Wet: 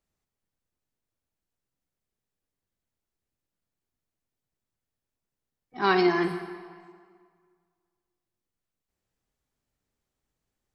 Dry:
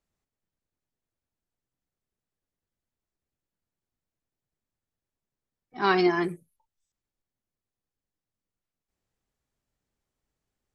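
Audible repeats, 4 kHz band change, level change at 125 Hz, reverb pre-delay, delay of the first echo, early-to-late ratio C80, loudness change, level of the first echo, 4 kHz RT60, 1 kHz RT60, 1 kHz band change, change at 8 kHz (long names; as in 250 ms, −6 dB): no echo audible, +0.5 dB, 0.0 dB, 36 ms, no echo audible, 10.0 dB, 0.0 dB, no echo audible, 1.4 s, 2.0 s, +0.5 dB, can't be measured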